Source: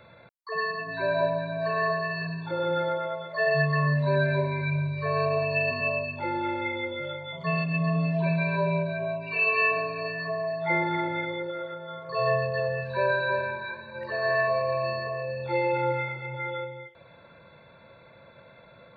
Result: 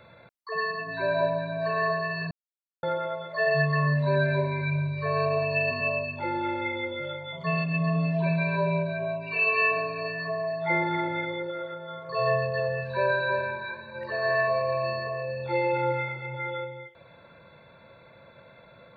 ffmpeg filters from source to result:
-filter_complex "[0:a]asplit=3[a][b][c];[a]atrim=end=2.31,asetpts=PTS-STARTPTS,afade=t=out:st=2.306:d=0.004:c=hsin[d];[b]atrim=start=2.31:end=2.83,asetpts=PTS-STARTPTS,volume=0[e];[c]atrim=start=2.83,asetpts=PTS-STARTPTS,afade=t=in:d=0.004:c=hsin[f];[d][e][f]concat=n=3:v=0:a=1"

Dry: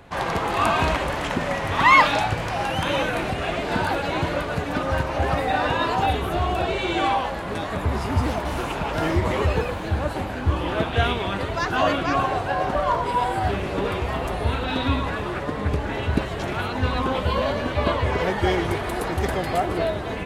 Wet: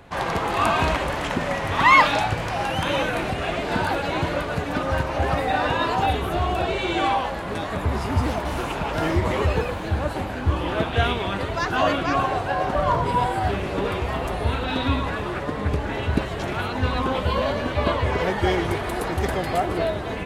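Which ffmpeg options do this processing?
-filter_complex "[0:a]asettb=1/sr,asplit=3[a][b][c];[a]atrim=end=12.784[d];[b]atrim=start=12.78:end=13.27,asetpts=PTS-STARTPTS,afade=t=in:d=0.004:c=qsin,afade=t=out:st=0.486:d=0.004:c=qsin,equalizer=f=120:w=0.67:g=8.5[e];[c]atrim=start=13.266[f];[d][e]acrossfade=d=0.004:c1=hsin:c2=qsin[g];[g][f]acrossfade=d=0.004:c1=qsin:c2=hsin"

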